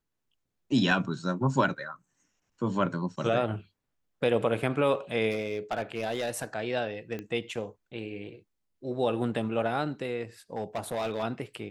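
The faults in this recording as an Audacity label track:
0.910000	0.910000	gap 3.1 ms
5.310000	6.440000	clipped -25 dBFS
7.190000	7.190000	pop -24 dBFS
10.530000	11.240000	clipped -26.5 dBFS

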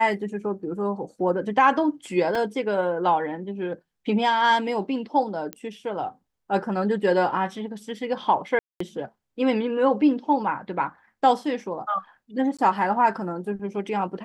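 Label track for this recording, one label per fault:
2.350000	2.350000	gap 3.5 ms
5.530000	5.530000	pop -16 dBFS
8.590000	8.800000	gap 0.214 s
12.570000	12.590000	gap 16 ms

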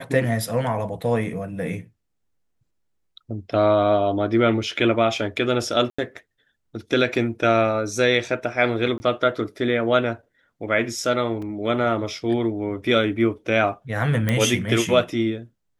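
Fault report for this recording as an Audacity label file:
5.900000	5.990000	gap 85 ms
8.980000	9.000000	gap 20 ms
11.420000	11.420000	gap 3.8 ms
14.290000	14.290000	pop -9 dBFS

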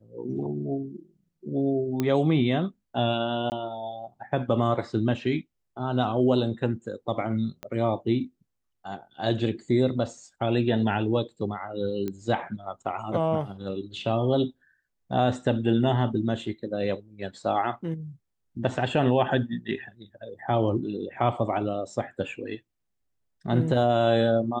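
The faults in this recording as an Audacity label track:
2.000000	2.000000	pop -13 dBFS
3.500000	3.520000	gap 19 ms
7.630000	7.630000	pop -21 dBFS
12.080000	12.080000	pop -19 dBFS

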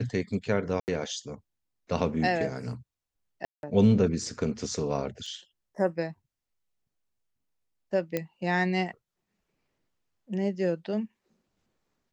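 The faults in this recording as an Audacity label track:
0.800000	0.880000	gap 79 ms
3.450000	3.630000	gap 0.181 s
5.260000	5.260000	gap 3.1 ms
8.170000	8.170000	pop -15 dBFS

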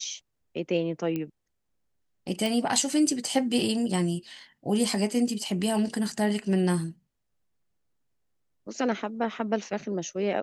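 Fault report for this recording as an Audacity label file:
1.160000	1.160000	pop -19 dBFS
2.460000	2.460000	pop

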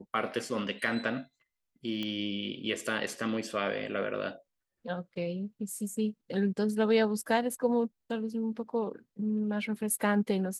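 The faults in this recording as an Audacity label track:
2.030000	2.030000	pop -22 dBFS

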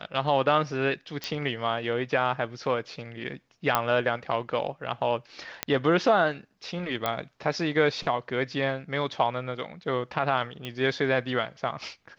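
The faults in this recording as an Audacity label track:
1.240000	1.240000	pop -16 dBFS
3.750000	3.750000	pop -7 dBFS
5.630000	5.630000	pop -8 dBFS
7.060000	7.060000	pop -12 dBFS
10.650000	10.650000	pop -20 dBFS

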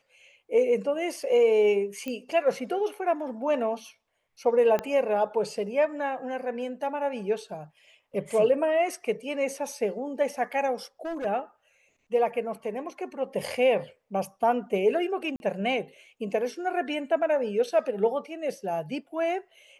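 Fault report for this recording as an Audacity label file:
2.080000	2.080000	pop -20 dBFS
4.790000	4.790000	pop -15 dBFS
11.050000	11.260000	clipped -29 dBFS
15.360000	15.400000	gap 41 ms

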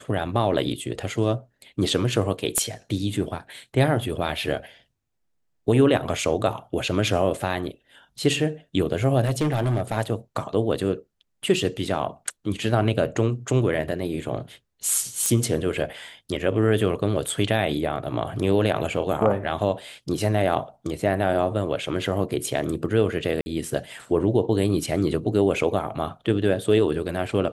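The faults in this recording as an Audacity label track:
2.580000	2.580000	pop -9 dBFS
9.240000	9.970000	clipped -17.5 dBFS
15.260000	15.260000	pop -9 dBFS
23.410000	23.460000	gap 50 ms

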